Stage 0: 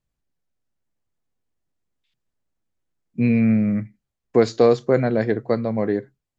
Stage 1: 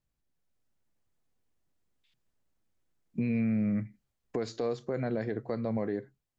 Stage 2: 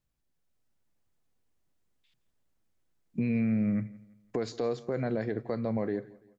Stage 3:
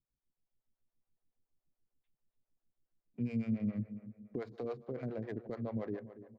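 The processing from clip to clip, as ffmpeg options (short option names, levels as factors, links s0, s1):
-af "acompressor=threshold=0.0316:ratio=3,alimiter=limit=0.0668:level=0:latency=1:release=57,dynaudnorm=f=160:g=5:m=1.58,volume=0.708"
-af "aecho=1:1:169|338|507:0.0841|0.0328|0.0128,volume=1.12"
-filter_complex "[0:a]aecho=1:1:285|570|855|1140:0.2|0.0818|0.0335|0.0138,adynamicsmooth=sensitivity=5.5:basefreq=1300,acrossover=split=430[s0][s1];[s0]aeval=exprs='val(0)*(1-1/2+1/2*cos(2*PI*7.1*n/s))':c=same[s2];[s1]aeval=exprs='val(0)*(1-1/2-1/2*cos(2*PI*7.1*n/s))':c=same[s3];[s2][s3]amix=inputs=2:normalize=0,volume=0.708"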